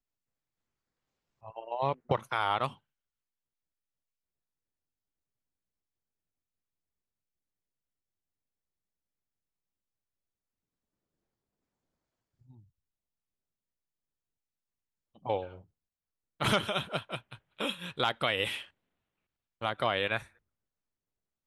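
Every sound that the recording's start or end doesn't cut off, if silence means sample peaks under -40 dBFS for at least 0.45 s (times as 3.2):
1.45–2.72
15.26–15.56
16.4–18.63
19.62–20.23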